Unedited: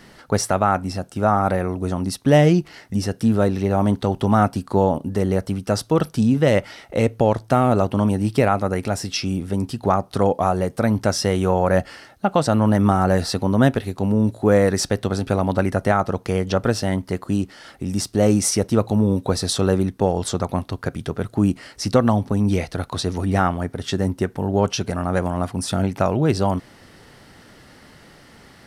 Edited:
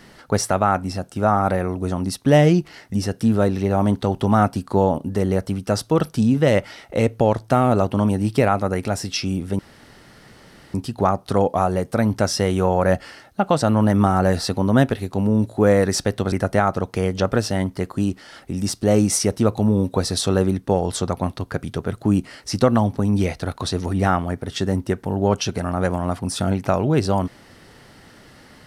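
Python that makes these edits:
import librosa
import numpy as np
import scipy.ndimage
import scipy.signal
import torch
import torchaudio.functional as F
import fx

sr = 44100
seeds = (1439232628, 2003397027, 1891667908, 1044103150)

y = fx.edit(x, sr, fx.insert_room_tone(at_s=9.59, length_s=1.15),
    fx.cut(start_s=15.17, length_s=0.47), tone=tone)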